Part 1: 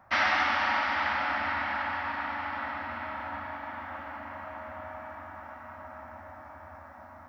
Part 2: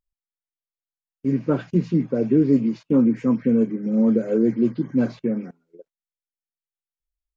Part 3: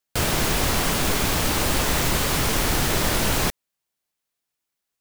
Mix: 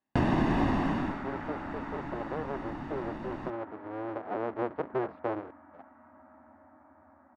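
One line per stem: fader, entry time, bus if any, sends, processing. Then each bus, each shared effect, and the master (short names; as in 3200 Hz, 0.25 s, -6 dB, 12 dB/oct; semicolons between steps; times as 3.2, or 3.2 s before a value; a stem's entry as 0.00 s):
-13.5 dB, 0.35 s, bus A, no send, dry
4 s -12.5 dB -> 4.74 s -5 dB, 0.00 s, no bus, no send, cycle switcher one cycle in 2, inverted; compressor, threshold -18 dBFS, peak gain reduction 6.5 dB; band-pass 790 Hz, Q 0.5
+1.5 dB, 0.00 s, bus A, no send, comb 1.1 ms, depth 61%; auto duck -22 dB, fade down 0.55 s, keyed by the second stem
bus A: 0.0 dB, bell 290 Hz +13 dB 1.1 oct; compressor 6:1, threshold -20 dBFS, peak gain reduction 9 dB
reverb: off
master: LPF 1600 Hz 12 dB/oct; low shelf 81 Hz -8.5 dB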